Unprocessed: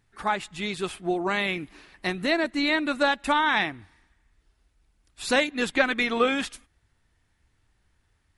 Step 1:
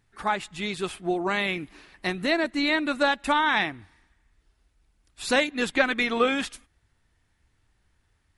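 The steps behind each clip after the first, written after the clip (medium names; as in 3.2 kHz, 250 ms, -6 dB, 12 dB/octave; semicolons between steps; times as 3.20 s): no audible change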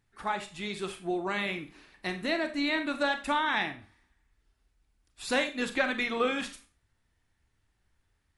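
Schroeder reverb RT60 0.33 s, combs from 28 ms, DRR 8 dB; trim -6 dB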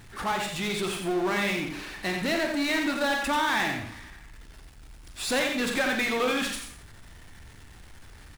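power-law waveshaper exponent 0.5; delay 89 ms -6.5 dB; trim -4 dB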